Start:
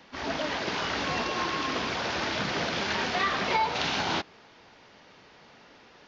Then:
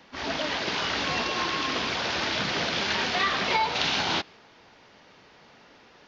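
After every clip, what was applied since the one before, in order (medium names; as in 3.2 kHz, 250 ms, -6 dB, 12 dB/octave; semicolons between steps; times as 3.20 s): dynamic bell 3.7 kHz, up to +5 dB, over -44 dBFS, Q 0.75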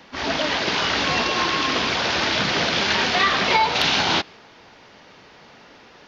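hard clipper -12.5 dBFS, distortion -37 dB; trim +6.5 dB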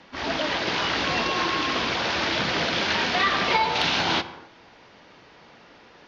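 distance through air 53 m; on a send at -11.5 dB: reverberation, pre-delay 3 ms; on the sum: trim -3 dB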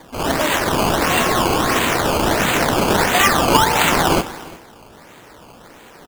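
decimation with a swept rate 16×, swing 100% 1.5 Hz; delay 353 ms -21 dB; trim +8 dB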